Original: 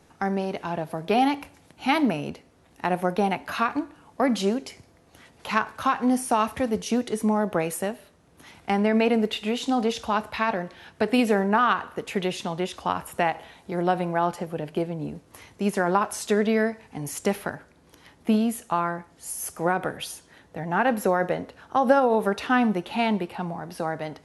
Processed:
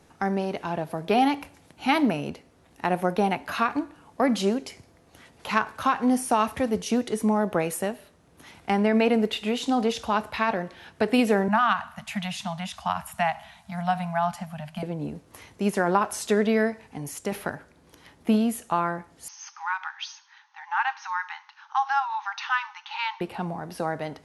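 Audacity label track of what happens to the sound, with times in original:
11.480000	14.830000	elliptic band-stop 220–660 Hz
16.820000	17.320000	fade out, to -6.5 dB
19.280000	23.210000	brick-wall FIR band-pass 780–6600 Hz

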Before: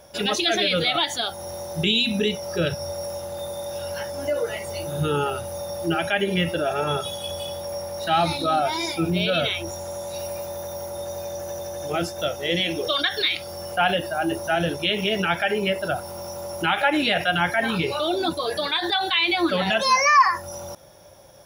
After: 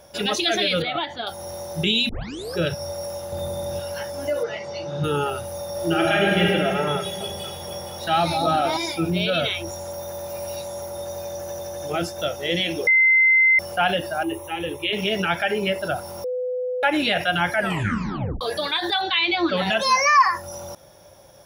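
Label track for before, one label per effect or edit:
0.820000	1.270000	air absorption 340 m
2.090000	2.090000	tape start 0.48 s
3.320000	3.800000	low shelf 290 Hz +12 dB
4.430000	5.040000	elliptic band-pass 110–5400 Hz, stop band 50 dB
5.710000	6.440000	reverb throw, RT60 2.4 s, DRR -2.5 dB
6.970000	8.770000	echo with dull and thin repeats by turns 0.234 s, split 980 Hz, feedback 54%, level -3.5 dB
9.930000	10.820000	reverse
12.870000	13.590000	bleep 2070 Hz -12.5 dBFS
14.230000	14.930000	fixed phaser centre 1000 Hz, stages 8
16.240000	16.830000	bleep 502 Hz -23 dBFS
17.540000	17.540000	tape stop 0.87 s
19.010000	19.570000	LPF 5500 Hz 24 dB/oct

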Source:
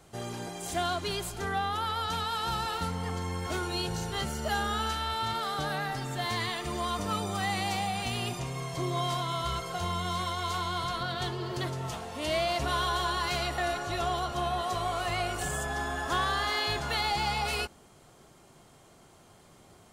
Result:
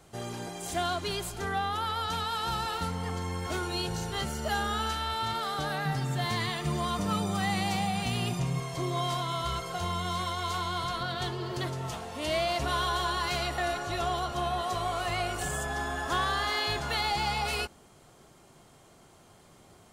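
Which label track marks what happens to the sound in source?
5.850000	8.600000	bell 160 Hz +14 dB 0.5 oct

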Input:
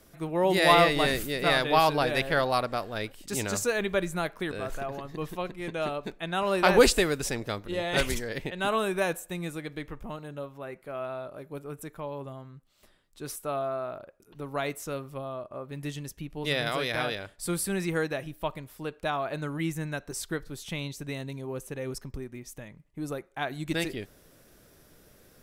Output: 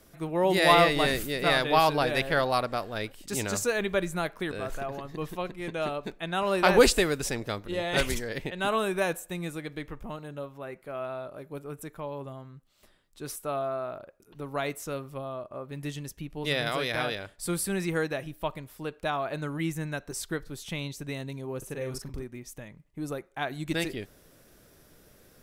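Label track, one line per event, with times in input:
21.580000	22.230000	doubler 40 ms -5 dB

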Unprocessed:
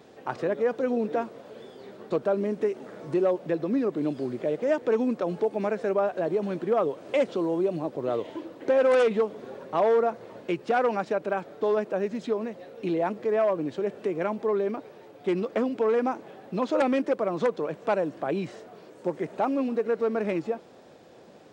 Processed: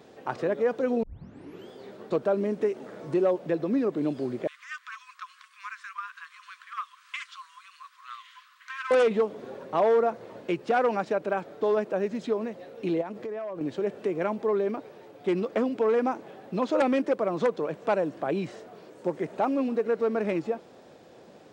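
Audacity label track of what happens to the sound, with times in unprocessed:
1.030000	1.030000	tape start 0.68 s
4.470000	8.910000	brick-wall FIR high-pass 1000 Hz
13.010000	13.610000	compressor 10:1, threshold -31 dBFS

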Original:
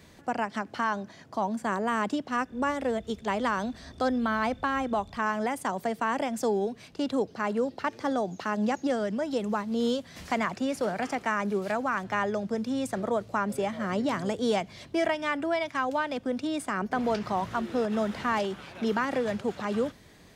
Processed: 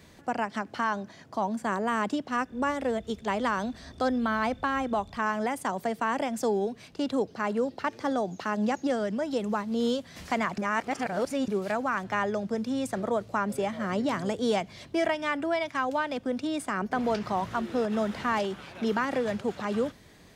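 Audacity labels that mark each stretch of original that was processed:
10.580000	11.480000	reverse

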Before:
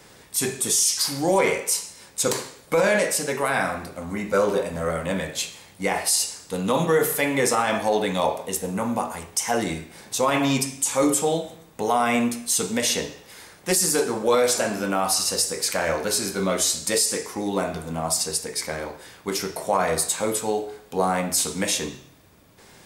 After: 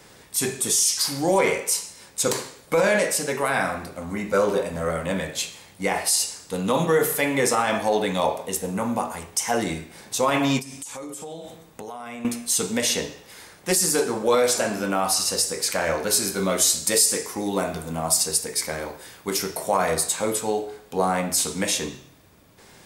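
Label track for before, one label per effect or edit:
10.590000	12.250000	compressor 12:1, threshold -32 dBFS
16.100000	19.940000	high shelf 8900 Hz +8 dB

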